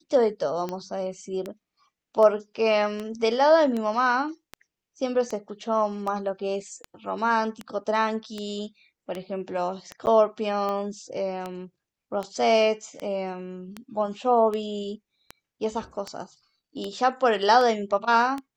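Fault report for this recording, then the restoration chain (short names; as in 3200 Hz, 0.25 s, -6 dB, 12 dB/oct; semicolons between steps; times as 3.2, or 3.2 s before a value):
tick 78 rpm -18 dBFS
10.06–10.07 gap 9.6 ms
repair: de-click; interpolate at 10.06, 9.6 ms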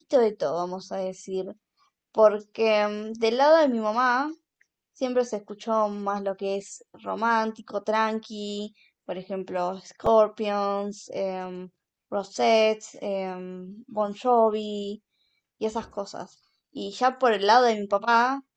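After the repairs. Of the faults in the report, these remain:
none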